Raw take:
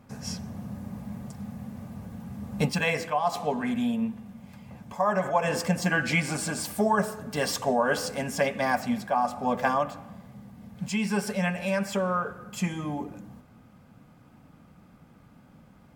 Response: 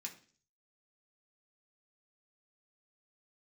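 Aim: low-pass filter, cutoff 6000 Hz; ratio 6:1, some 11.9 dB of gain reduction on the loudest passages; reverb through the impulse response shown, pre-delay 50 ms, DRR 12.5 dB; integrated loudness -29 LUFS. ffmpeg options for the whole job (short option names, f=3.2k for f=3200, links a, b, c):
-filter_complex "[0:a]lowpass=6k,acompressor=threshold=-33dB:ratio=6,asplit=2[a][b];[1:a]atrim=start_sample=2205,adelay=50[c];[b][c]afir=irnorm=-1:irlink=0,volume=-9.5dB[d];[a][d]amix=inputs=2:normalize=0,volume=8.5dB"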